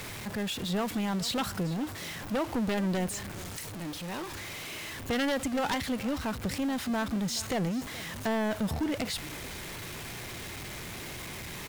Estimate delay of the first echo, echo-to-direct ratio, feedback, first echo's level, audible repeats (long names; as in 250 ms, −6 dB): 424 ms, −17.5 dB, repeats not evenly spaced, −17.5 dB, 1